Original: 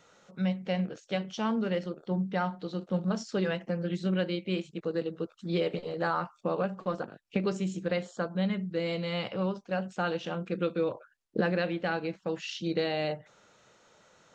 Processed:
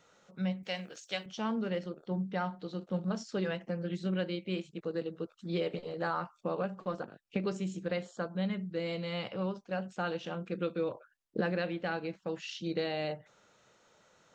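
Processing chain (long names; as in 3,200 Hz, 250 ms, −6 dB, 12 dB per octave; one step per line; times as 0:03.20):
0:00.63–0:01.26: spectral tilt +4 dB per octave
level −4 dB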